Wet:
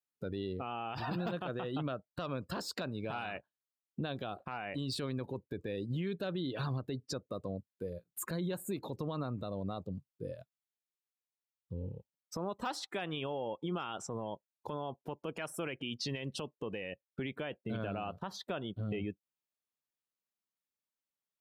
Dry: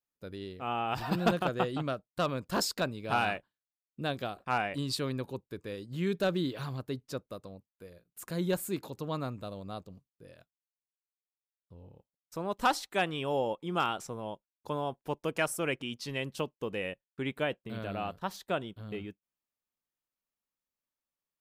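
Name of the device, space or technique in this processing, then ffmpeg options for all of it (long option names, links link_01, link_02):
broadcast voice chain: -af "afftdn=noise_reduction=18:noise_floor=-48,highpass=frequency=71:width=0.5412,highpass=frequency=71:width=1.3066,deesser=0.85,acompressor=threshold=-45dB:ratio=5,equalizer=frequency=3600:width_type=o:width=0.77:gain=2,alimiter=level_in=17.5dB:limit=-24dB:level=0:latency=1:release=38,volume=-17.5dB,volume=13dB"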